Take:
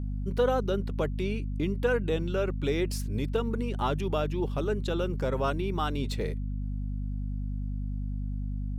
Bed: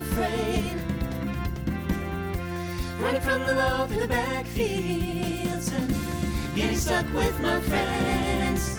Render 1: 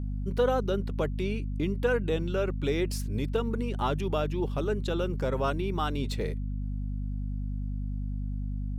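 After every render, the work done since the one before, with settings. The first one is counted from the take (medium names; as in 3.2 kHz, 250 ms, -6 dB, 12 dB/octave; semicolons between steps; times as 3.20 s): no audible change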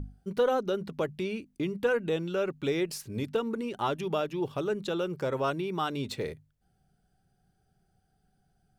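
hum notches 50/100/150/200/250 Hz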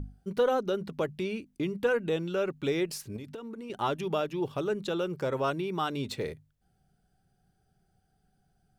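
3.16–3.70 s: compression 12:1, threshold -37 dBFS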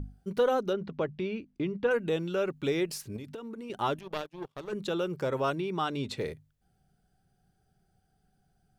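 0.73–1.91 s: distance through air 180 m; 3.99–4.73 s: power-law waveshaper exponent 2; 5.55–6.17 s: Bessel low-pass 8.3 kHz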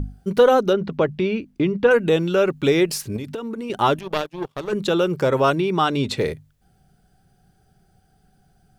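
trim +11.5 dB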